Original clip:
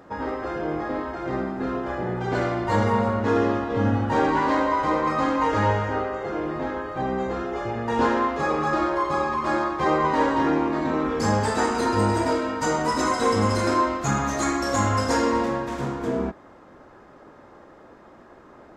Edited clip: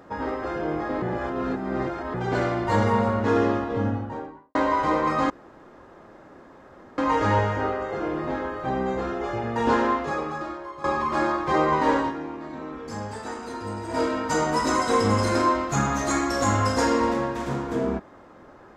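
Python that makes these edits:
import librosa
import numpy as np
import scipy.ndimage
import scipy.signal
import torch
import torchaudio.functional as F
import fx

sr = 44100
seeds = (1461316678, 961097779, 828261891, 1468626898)

y = fx.studio_fade_out(x, sr, start_s=3.44, length_s=1.11)
y = fx.edit(y, sr, fx.reverse_span(start_s=1.02, length_s=1.12),
    fx.insert_room_tone(at_s=5.3, length_s=1.68),
    fx.fade_out_to(start_s=8.23, length_s=0.93, curve='qua', floor_db=-14.5),
    fx.fade_down_up(start_s=10.31, length_s=2.03, db=-11.5, fade_s=0.14), tone=tone)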